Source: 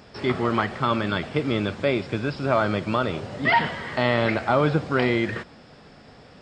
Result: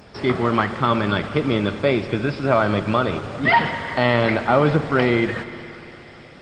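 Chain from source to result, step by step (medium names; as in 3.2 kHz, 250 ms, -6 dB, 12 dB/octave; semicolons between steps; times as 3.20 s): thinning echo 202 ms, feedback 82%, high-pass 600 Hz, level -17.5 dB; spring tank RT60 3.1 s, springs 58 ms, chirp 30 ms, DRR 12 dB; trim +4 dB; Opus 24 kbps 48 kHz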